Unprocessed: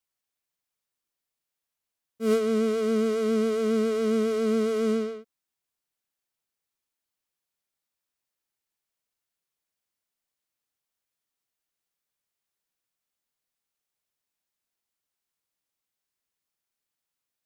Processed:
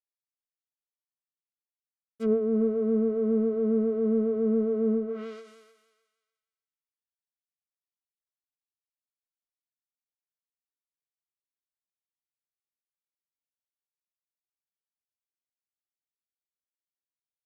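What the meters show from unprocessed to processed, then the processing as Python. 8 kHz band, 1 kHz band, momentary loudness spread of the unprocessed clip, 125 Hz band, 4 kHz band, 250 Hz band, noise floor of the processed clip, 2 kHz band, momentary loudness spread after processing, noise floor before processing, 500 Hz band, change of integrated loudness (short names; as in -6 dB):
under -20 dB, -10.5 dB, 5 LU, n/a, under -15 dB, +0.5 dB, under -85 dBFS, under -10 dB, 6 LU, under -85 dBFS, -1.5 dB, -1.0 dB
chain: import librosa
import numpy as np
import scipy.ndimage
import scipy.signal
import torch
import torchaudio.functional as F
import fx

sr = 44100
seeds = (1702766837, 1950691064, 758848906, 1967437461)

y = fx.cvsd(x, sr, bps=64000)
y = fx.echo_thinned(y, sr, ms=302, feedback_pct=26, hz=720.0, wet_db=-5)
y = fx.env_lowpass_down(y, sr, base_hz=550.0, full_db=-23.5)
y = fx.end_taper(y, sr, db_per_s=110.0)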